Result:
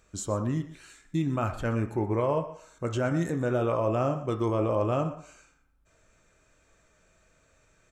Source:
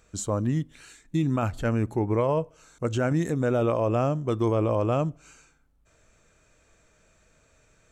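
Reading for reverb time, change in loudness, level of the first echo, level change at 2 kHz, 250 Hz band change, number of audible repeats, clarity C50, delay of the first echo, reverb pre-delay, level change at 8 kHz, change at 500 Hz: 0.60 s, -2.5 dB, -16.5 dB, -1.5 dB, -3.0 dB, 1, 9.5 dB, 0.122 s, 3 ms, -3.0 dB, -2.0 dB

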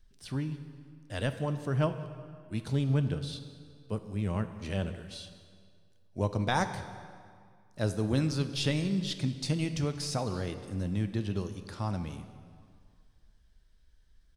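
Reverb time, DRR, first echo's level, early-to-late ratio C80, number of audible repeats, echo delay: 2.1 s, 9.0 dB, -22.5 dB, 11.5 dB, 1, 0.188 s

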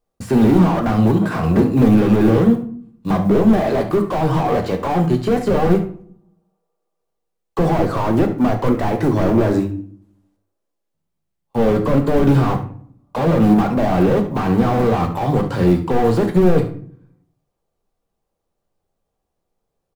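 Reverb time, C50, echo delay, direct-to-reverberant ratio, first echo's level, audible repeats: 0.55 s, 10.0 dB, 71 ms, 4.5 dB, -14.5 dB, 1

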